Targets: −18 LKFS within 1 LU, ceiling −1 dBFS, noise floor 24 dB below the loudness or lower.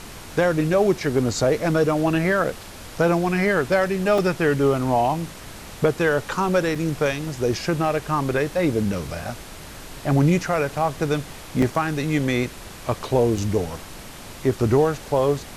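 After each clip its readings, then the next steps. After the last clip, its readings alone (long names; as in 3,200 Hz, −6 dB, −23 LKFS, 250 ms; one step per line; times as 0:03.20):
number of dropouts 4; longest dropout 3.9 ms; background noise floor −39 dBFS; target noise floor −46 dBFS; integrated loudness −22.0 LKFS; sample peak −7.0 dBFS; target loudness −18.0 LKFS
→ repair the gap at 0:04.18/0:06.75/0:11.62/0:13.38, 3.9 ms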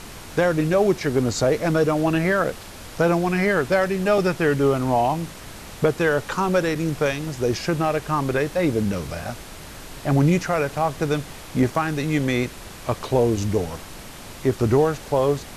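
number of dropouts 0; background noise floor −39 dBFS; target noise floor −46 dBFS
→ noise reduction from a noise print 7 dB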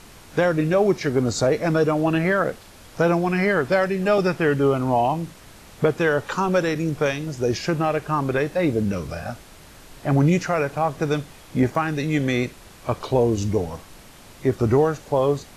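background noise floor −46 dBFS; integrated loudness −22.0 LKFS; sample peak −7.0 dBFS; target loudness −18.0 LKFS
→ level +4 dB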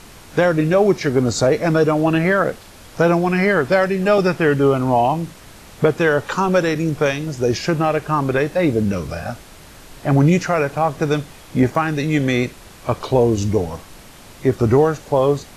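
integrated loudness −18.0 LKFS; sample peak −3.0 dBFS; background noise floor −42 dBFS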